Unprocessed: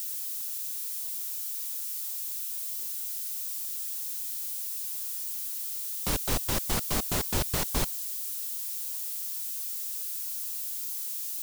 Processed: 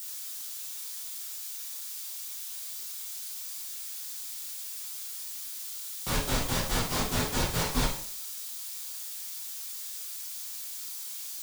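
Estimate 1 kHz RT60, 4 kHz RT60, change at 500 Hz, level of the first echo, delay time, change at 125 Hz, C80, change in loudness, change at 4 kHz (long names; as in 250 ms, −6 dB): 0.55 s, 0.50 s, +1.5 dB, no echo audible, no echo audible, +2.0 dB, 9.5 dB, −3.0 dB, +2.0 dB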